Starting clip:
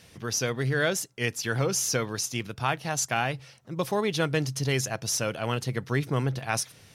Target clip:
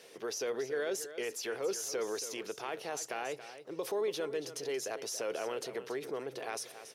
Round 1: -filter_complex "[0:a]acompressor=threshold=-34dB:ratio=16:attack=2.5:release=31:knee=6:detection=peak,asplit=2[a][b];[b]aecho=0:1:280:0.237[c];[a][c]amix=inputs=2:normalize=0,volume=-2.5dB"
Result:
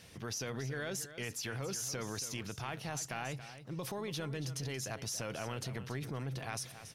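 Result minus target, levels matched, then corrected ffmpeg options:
500 Hz band -6.5 dB
-filter_complex "[0:a]acompressor=threshold=-34dB:ratio=16:attack=2.5:release=31:knee=6:detection=peak,highpass=f=420:t=q:w=3.4,asplit=2[a][b];[b]aecho=0:1:280:0.237[c];[a][c]amix=inputs=2:normalize=0,volume=-2.5dB"

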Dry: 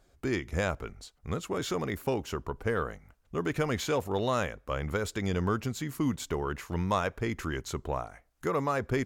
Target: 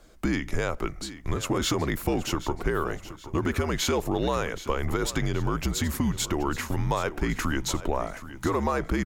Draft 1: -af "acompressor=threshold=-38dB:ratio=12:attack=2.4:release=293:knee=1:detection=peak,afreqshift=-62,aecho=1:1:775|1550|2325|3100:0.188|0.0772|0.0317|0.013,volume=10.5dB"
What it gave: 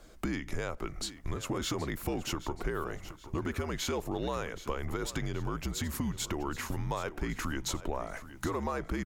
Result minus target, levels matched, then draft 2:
compressor: peak gain reduction +8 dB
-af "acompressor=threshold=-29.5dB:ratio=12:attack=2.4:release=293:knee=1:detection=peak,afreqshift=-62,aecho=1:1:775|1550|2325|3100:0.188|0.0772|0.0317|0.013,volume=10.5dB"

